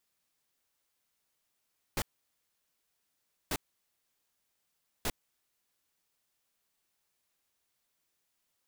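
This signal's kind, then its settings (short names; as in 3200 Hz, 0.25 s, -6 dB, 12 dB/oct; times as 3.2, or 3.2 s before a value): noise bursts pink, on 0.05 s, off 1.49 s, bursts 3, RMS -32 dBFS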